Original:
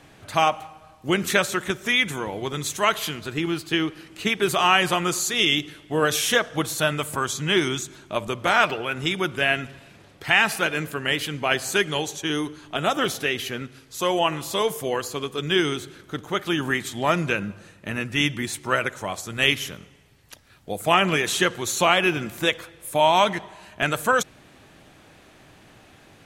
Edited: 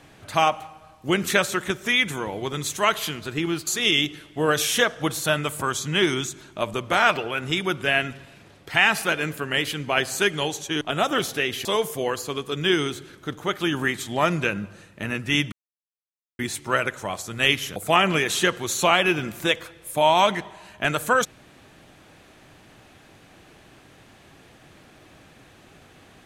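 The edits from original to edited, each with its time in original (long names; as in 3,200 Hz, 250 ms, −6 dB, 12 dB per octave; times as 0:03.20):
0:03.67–0:05.21: remove
0:12.35–0:12.67: remove
0:13.51–0:14.51: remove
0:18.38: splice in silence 0.87 s
0:19.75–0:20.74: remove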